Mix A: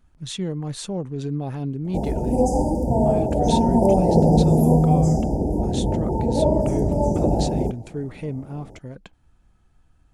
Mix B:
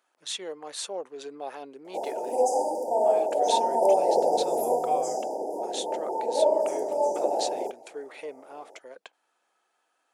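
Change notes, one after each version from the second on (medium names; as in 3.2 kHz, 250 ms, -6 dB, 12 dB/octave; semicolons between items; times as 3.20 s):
master: add high-pass 470 Hz 24 dB/octave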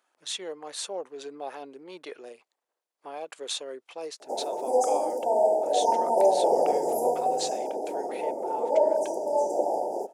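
background: entry +2.35 s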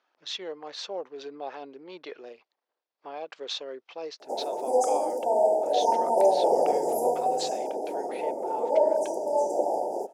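speech: add steep low-pass 5.6 kHz 36 dB/octave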